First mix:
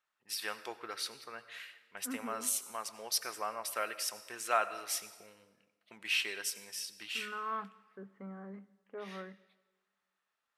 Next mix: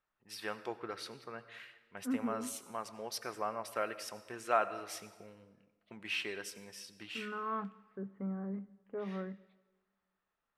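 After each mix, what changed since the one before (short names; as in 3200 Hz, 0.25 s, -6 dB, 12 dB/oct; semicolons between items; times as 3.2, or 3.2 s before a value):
master: add tilt -3.5 dB/oct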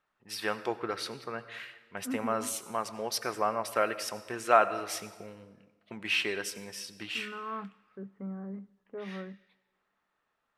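first voice +8.0 dB; second voice: send -7.0 dB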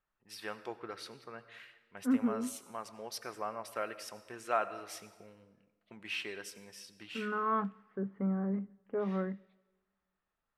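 first voice -9.5 dB; second voice +6.5 dB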